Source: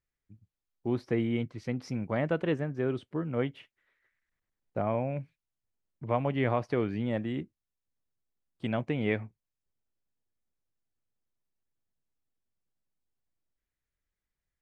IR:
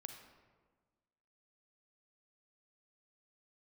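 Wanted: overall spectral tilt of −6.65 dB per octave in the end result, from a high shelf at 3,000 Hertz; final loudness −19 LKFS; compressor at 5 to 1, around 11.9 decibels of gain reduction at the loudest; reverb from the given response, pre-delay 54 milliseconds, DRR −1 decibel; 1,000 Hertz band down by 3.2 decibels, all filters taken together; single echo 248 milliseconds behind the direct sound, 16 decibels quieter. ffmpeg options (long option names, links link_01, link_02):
-filter_complex "[0:a]equalizer=frequency=1000:width_type=o:gain=-5,highshelf=frequency=3000:gain=4,acompressor=threshold=-38dB:ratio=5,aecho=1:1:248:0.158,asplit=2[link_01][link_02];[1:a]atrim=start_sample=2205,adelay=54[link_03];[link_02][link_03]afir=irnorm=-1:irlink=0,volume=5.5dB[link_04];[link_01][link_04]amix=inputs=2:normalize=0,volume=20.5dB"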